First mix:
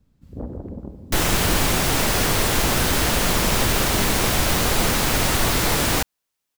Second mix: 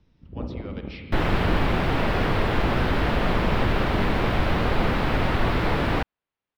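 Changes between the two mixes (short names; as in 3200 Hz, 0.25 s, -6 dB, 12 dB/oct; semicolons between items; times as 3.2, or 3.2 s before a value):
speech: unmuted; master: add air absorption 410 m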